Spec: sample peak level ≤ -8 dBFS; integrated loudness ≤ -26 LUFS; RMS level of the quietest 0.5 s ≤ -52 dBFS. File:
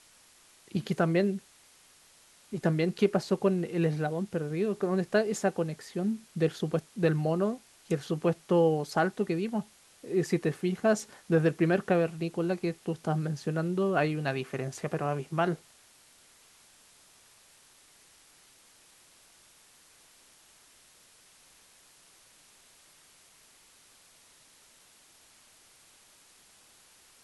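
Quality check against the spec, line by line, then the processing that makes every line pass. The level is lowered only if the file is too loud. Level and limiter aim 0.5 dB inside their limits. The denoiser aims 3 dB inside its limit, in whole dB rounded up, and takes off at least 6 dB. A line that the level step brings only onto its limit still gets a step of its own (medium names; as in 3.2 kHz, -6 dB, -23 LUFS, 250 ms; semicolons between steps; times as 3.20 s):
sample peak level -11.5 dBFS: pass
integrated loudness -29.5 LUFS: pass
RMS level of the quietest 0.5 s -60 dBFS: pass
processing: none needed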